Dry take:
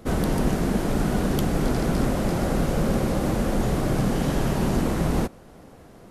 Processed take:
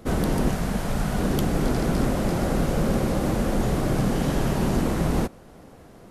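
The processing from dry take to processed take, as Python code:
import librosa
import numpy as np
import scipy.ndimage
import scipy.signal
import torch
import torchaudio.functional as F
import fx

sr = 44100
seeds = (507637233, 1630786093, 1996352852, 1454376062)

y = fx.peak_eq(x, sr, hz=330.0, db=-10.5, octaves=0.86, at=(0.51, 1.19))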